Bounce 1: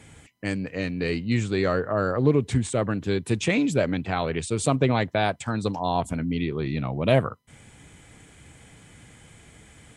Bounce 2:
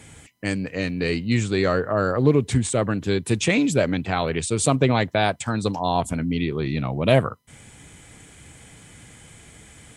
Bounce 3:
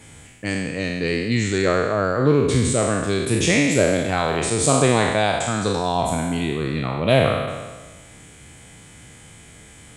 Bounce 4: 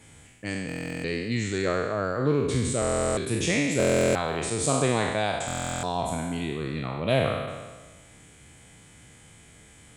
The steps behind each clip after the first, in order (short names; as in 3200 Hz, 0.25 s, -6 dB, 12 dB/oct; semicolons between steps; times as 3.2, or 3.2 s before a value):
high shelf 4700 Hz +5.5 dB; gain +2.5 dB
spectral trails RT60 1.37 s; gain -1 dB
stuck buffer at 0.67/2.8/3.78/5.46, samples 1024, times 15; gain -7 dB